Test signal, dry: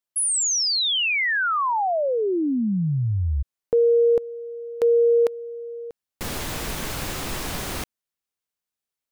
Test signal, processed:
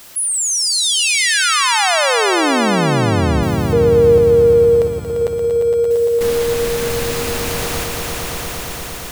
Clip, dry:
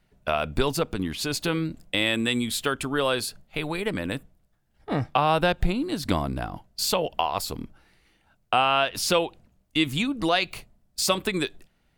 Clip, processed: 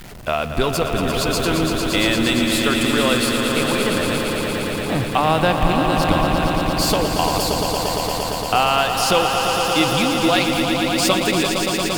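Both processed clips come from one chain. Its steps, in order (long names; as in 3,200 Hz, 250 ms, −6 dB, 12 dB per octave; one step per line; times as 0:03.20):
converter with a step at zero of −35 dBFS
echo that builds up and dies away 115 ms, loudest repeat 5, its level −7.5 dB
level +3 dB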